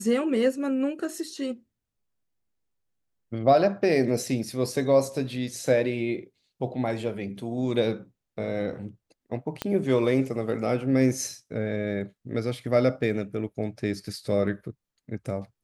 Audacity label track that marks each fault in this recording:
9.620000	9.620000	pop -13 dBFS

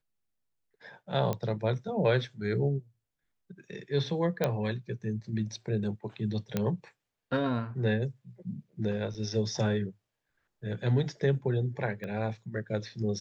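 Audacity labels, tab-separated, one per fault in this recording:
1.330000	1.330000	pop -18 dBFS
4.440000	4.440000	pop -13 dBFS
6.570000	6.570000	pop -15 dBFS
9.140000	9.150000	gap 6.7 ms
12.040000	12.040000	pop -26 dBFS

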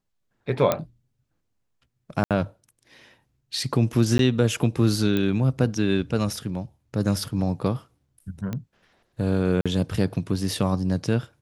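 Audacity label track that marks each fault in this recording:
0.720000	0.720000	pop -7 dBFS
2.240000	2.310000	gap 67 ms
4.180000	4.190000	gap 12 ms
5.170000	5.170000	pop -13 dBFS
8.530000	8.530000	pop -17 dBFS
9.610000	9.660000	gap 46 ms

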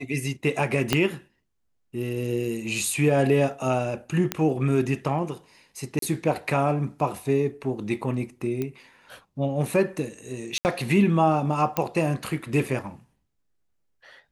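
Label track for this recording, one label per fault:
0.930000	0.930000	pop -5 dBFS
4.320000	4.320000	pop -8 dBFS
5.990000	6.020000	gap 33 ms
8.620000	8.620000	pop -16 dBFS
10.580000	10.650000	gap 69 ms
11.770000	11.770000	pop -8 dBFS

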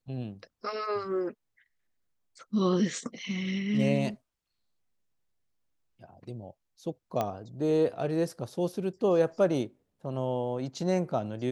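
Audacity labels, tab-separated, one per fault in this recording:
7.210000	7.210000	pop -16 dBFS

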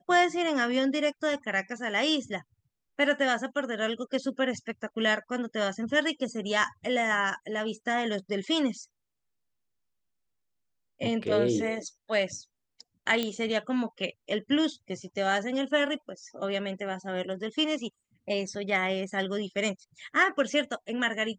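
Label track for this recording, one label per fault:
13.230000	13.230000	pop -15 dBFS

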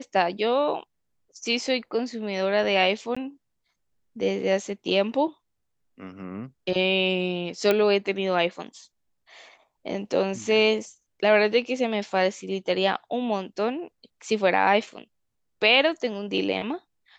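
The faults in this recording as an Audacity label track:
3.150000	3.170000	gap 15 ms
7.710000	7.710000	pop -9 dBFS

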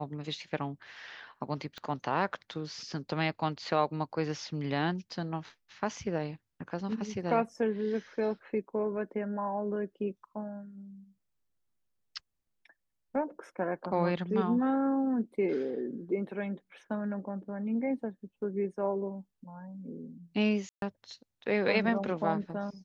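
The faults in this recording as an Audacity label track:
1.780000	1.780000	pop -28 dBFS
20.690000	20.820000	gap 0.132 s

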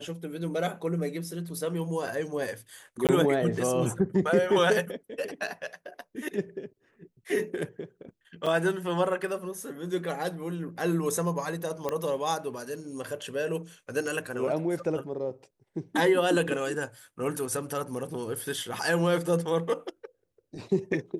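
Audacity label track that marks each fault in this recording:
3.070000	3.090000	gap 18 ms
8.460000	8.470000	gap 5.1 ms
11.890000	11.890000	pop -16 dBFS

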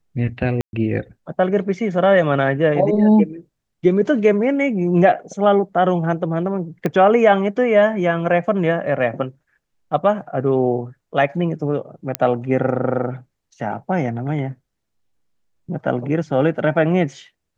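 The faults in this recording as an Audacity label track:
0.610000	0.730000	gap 0.121 s
6.860000	6.860000	pop -10 dBFS
12.150000	12.150000	pop -3 dBFS

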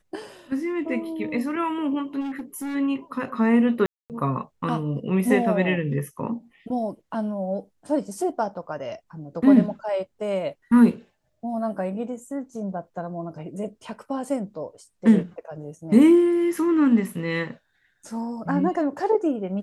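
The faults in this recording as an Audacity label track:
2.200000	2.760000	clipped -27.5 dBFS
3.860000	4.100000	gap 0.238 s

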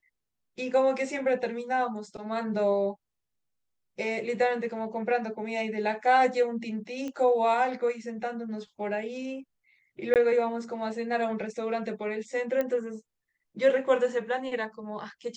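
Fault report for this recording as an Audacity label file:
7.080000	7.080000	pop -24 dBFS
10.140000	10.160000	gap 18 ms
12.610000	12.610000	pop -17 dBFS

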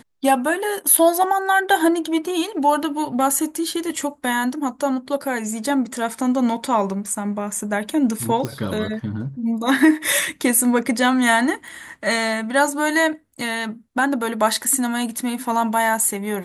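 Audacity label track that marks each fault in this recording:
8.450000	8.450000	pop -11 dBFS
11.680000	11.680000	pop

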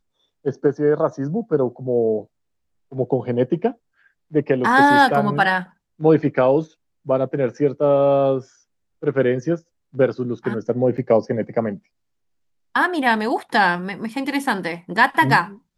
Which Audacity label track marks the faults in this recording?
10.970000	10.980000	gap 8.2 ms

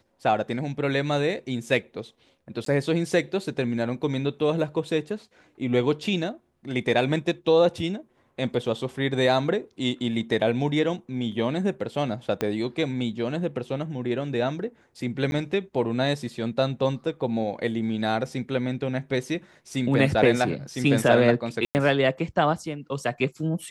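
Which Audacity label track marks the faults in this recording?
2.650000	2.660000	gap 13 ms
12.410000	12.410000	pop -11 dBFS
15.310000	15.320000	gap
21.650000	21.750000	gap 99 ms

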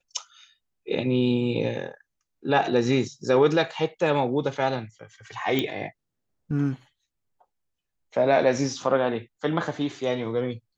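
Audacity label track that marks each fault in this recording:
5.590000	5.590000	pop -11 dBFS

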